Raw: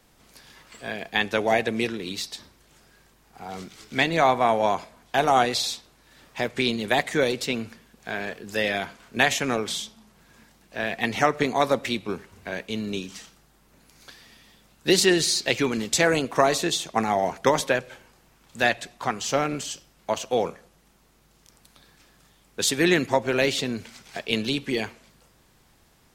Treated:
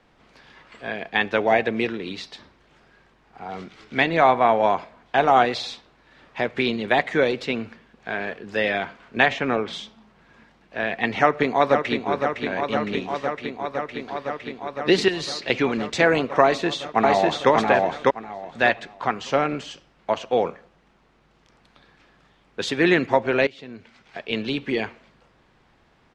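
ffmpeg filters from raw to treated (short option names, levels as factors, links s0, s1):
-filter_complex "[0:a]asettb=1/sr,asplit=3[s0][s1][s2];[s0]atrim=end=9.264[s3];[s1]atrim=start=9.26:end=9.73,asetpts=PTS-STARTPTS,afade=t=in:d=0.004:c=qsin,afade=t=out:st=0.466:d=0.004:c=qsin,aemphasis=mode=reproduction:type=50fm[s4];[s2]atrim=start=9.726[s5];[s3][s4]acrossfade=d=0.004:c1=hsin:c2=qsin[s6];[s6][s5]acrossfade=d=0.004:c1=qsin:c2=hsin,asplit=2[s7][s8];[s8]afade=t=in:st=11.19:d=0.01,afade=t=out:st=12.13:d=0.01,aecho=0:1:510|1020|1530|2040|2550|3060|3570|4080|4590|5100|5610|6120:0.473151|0.402179|0.341852|0.290574|0.246988|0.20994|0.178449|0.151681|0.128929|0.10959|0.0931514|0.0791787[s9];[s7][s9]amix=inputs=2:normalize=0,asettb=1/sr,asplit=3[s10][s11][s12];[s10]atrim=end=15.084[s13];[s11]atrim=start=15.08:end=15.5,asetpts=PTS-STARTPTS,afade=t=in:d=0.004:c=qsin,afade=t=out:st=0.416:d=0.004:c=qsin,acrossover=split=130|3000[s14][s15][s16];[s15]acompressor=threshold=0.02:ratio=2.5:attack=3.2:release=140:knee=2.83:detection=peak[s17];[s14][s17][s16]amix=inputs=3:normalize=0[s18];[s12]atrim=start=15.496[s19];[s13][s18]acrossfade=d=0.004:c1=hsin:c2=qsin[s20];[s20][s19]acrossfade=d=0.004:c1=qsin:c2=hsin,asplit=2[s21][s22];[s22]afade=t=in:st=16.43:d=0.01,afade=t=out:st=17.5:d=0.01,aecho=0:1:600|1200|1800:0.891251|0.17825|0.03565[s23];[s21][s23]amix=inputs=2:normalize=0,asplit=2[s24][s25];[s24]atrim=end=23.47,asetpts=PTS-STARTPTS,afade=t=out:st=23.466:d=0.004:c=hsin:silence=0.0841395[s26];[s25]atrim=start=23.47,asetpts=PTS-STARTPTS,afade=t=in:d=1.18:silence=0.0841395[s27];[s26][s27]concat=n=2:v=0:a=1,lowpass=2800,lowshelf=f=190:g=-5.5,volume=1.5"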